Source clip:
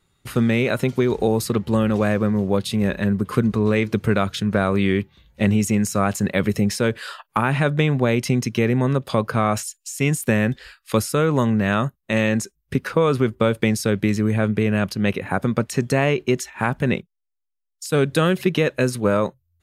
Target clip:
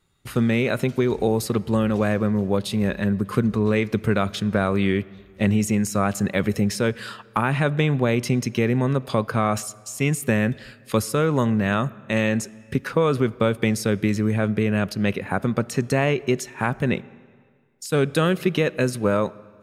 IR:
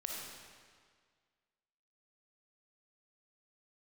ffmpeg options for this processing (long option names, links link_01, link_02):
-filter_complex "[0:a]asplit=2[link_01][link_02];[1:a]atrim=start_sample=2205,highshelf=frequency=4600:gain=-8.5[link_03];[link_02][link_03]afir=irnorm=-1:irlink=0,volume=-17.5dB[link_04];[link_01][link_04]amix=inputs=2:normalize=0,volume=-2.5dB"